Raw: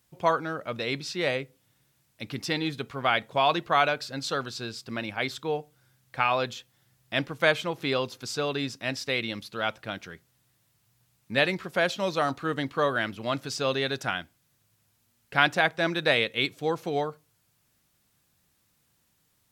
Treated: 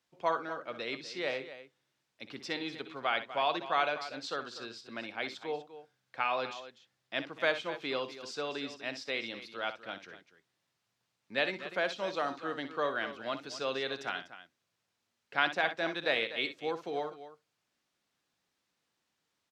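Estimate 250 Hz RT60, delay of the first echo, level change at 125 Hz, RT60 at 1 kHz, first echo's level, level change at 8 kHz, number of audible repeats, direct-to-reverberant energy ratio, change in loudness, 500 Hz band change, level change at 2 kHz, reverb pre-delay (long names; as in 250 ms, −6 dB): no reverb audible, 61 ms, −17.5 dB, no reverb audible, −11.5 dB, −11.0 dB, 2, no reverb audible, −7.0 dB, −7.0 dB, −6.5 dB, no reverb audible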